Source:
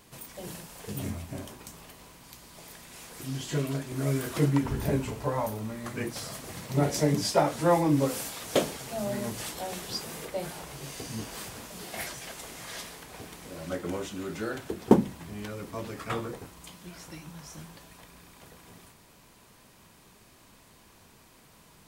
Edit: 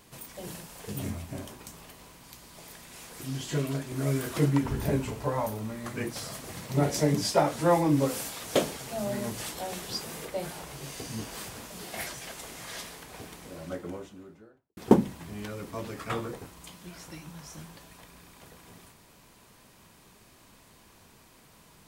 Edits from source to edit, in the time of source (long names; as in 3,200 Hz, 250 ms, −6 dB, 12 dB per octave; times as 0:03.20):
0:13.21–0:14.77: fade out and dull